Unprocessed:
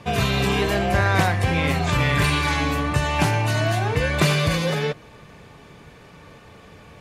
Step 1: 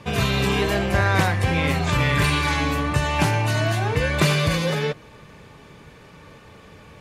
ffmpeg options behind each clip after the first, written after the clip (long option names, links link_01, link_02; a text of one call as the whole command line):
ffmpeg -i in.wav -af "bandreject=frequency=710:width=15" out.wav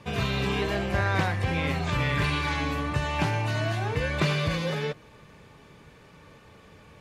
ffmpeg -i in.wav -filter_complex "[0:a]acrossover=split=5600[link_01][link_02];[link_02]acompressor=threshold=-46dB:ratio=4:attack=1:release=60[link_03];[link_01][link_03]amix=inputs=2:normalize=0,volume=-6dB" out.wav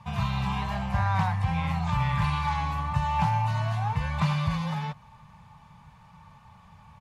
ffmpeg -i in.wav -af "firequalizer=gain_entry='entry(180,0);entry(340,-28);entry(870,6);entry(1500,-8)':delay=0.05:min_phase=1,volume=1.5dB" out.wav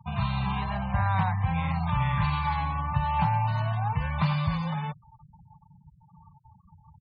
ffmpeg -i in.wav -af "afftfilt=real='re*gte(hypot(re,im),0.0126)':imag='im*gte(hypot(re,im),0.0126)':win_size=1024:overlap=0.75" out.wav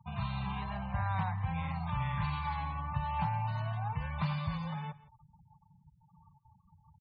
ffmpeg -i in.wav -af "aecho=1:1:165:0.112,volume=-8dB" out.wav